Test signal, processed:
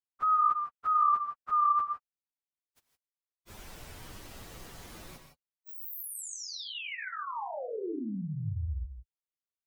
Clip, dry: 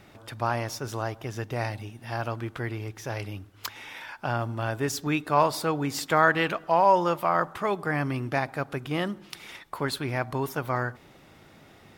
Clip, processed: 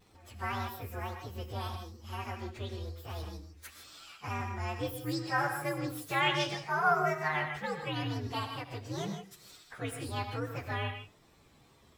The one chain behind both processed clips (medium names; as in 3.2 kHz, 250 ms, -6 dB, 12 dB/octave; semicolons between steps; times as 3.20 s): frequency axis rescaled in octaves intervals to 129%; wow and flutter 63 cents; gated-style reverb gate 180 ms rising, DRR 5.5 dB; trim -6 dB